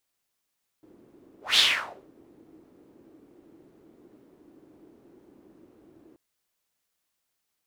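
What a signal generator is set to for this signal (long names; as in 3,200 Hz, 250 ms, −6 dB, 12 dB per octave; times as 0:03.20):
pass-by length 5.33 s, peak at 0:00.74, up 0.18 s, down 0.55 s, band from 320 Hz, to 3,600 Hz, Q 4, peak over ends 36.5 dB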